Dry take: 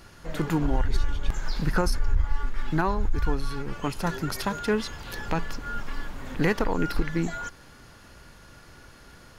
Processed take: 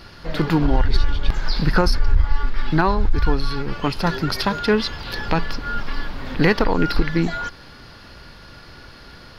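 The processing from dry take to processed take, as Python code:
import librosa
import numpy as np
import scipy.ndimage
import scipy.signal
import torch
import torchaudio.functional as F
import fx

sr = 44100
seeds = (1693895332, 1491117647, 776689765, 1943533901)

y = fx.high_shelf_res(x, sr, hz=5800.0, db=-7.0, q=3.0)
y = y * 10.0 ** (7.0 / 20.0)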